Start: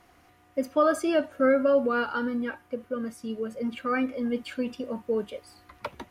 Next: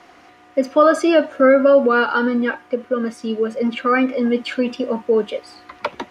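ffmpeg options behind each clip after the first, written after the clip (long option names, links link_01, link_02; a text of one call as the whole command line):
ffmpeg -i in.wav -filter_complex "[0:a]acrossover=split=200 7100:gain=0.178 1 0.126[link_01][link_02][link_03];[link_01][link_02][link_03]amix=inputs=3:normalize=0,asplit=2[link_04][link_05];[link_05]alimiter=limit=-23.5dB:level=0:latency=1:release=107,volume=-1.5dB[link_06];[link_04][link_06]amix=inputs=2:normalize=0,volume=7.5dB" out.wav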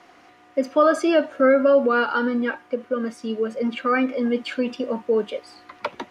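ffmpeg -i in.wav -af "equalizer=frequency=62:width_type=o:width=0.39:gain=-12,volume=-4dB" out.wav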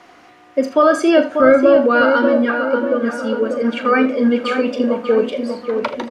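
ffmpeg -i in.wav -filter_complex "[0:a]asplit=2[link_01][link_02];[link_02]adelay=591,lowpass=frequency=1900:poles=1,volume=-5.5dB,asplit=2[link_03][link_04];[link_04]adelay=591,lowpass=frequency=1900:poles=1,volume=0.53,asplit=2[link_05][link_06];[link_06]adelay=591,lowpass=frequency=1900:poles=1,volume=0.53,asplit=2[link_07][link_08];[link_08]adelay=591,lowpass=frequency=1900:poles=1,volume=0.53,asplit=2[link_09][link_10];[link_10]adelay=591,lowpass=frequency=1900:poles=1,volume=0.53,asplit=2[link_11][link_12];[link_12]adelay=591,lowpass=frequency=1900:poles=1,volume=0.53,asplit=2[link_13][link_14];[link_14]adelay=591,lowpass=frequency=1900:poles=1,volume=0.53[link_15];[link_03][link_05][link_07][link_09][link_11][link_13][link_15]amix=inputs=7:normalize=0[link_16];[link_01][link_16]amix=inputs=2:normalize=0,apsyclip=9dB,asplit=2[link_17][link_18];[link_18]aecho=0:1:39|80:0.251|0.188[link_19];[link_17][link_19]amix=inputs=2:normalize=0,volume=-4dB" out.wav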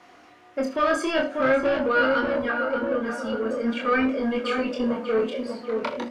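ffmpeg -i in.wav -filter_complex "[0:a]acrossover=split=1300[link_01][link_02];[link_01]asoftclip=type=tanh:threshold=-14.5dB[link_03];[link_03][link_02]amix=inputs=2:normalize=0,flanger=delay=22.5:depth=5.6:speed=0.46,volume=-2.5dB" out.wav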